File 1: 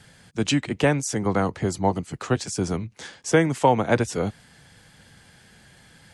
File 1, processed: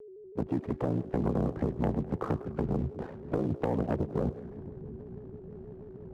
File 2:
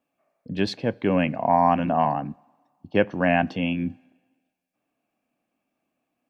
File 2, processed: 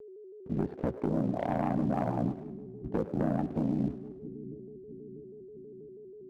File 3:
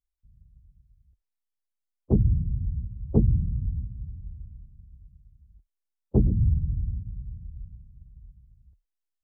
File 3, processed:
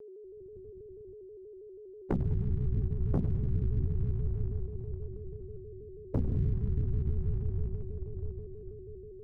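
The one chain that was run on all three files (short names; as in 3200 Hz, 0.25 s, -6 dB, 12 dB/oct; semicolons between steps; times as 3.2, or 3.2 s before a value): opening faded in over 1.29 s; treble ducked by the level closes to 560 Hz, closed at -20 dBFS; Bessel low-pass 730 Hz, order 2; low-pass opened by the level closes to 480 Hz, open at -20.5 dBFS; compressor 12:1, threshold -33 dBFS; sample leveller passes 2; ring modulator 30 Hz; split-band echo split 330 Hz, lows 0.66 s, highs 0.102 s, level -14 dB; hard clip -26.5 dBFS; whine 400 Hz -50 dBFS; shaped vibrato square 6.2 Hz, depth 100 cents; gain +4.5 dB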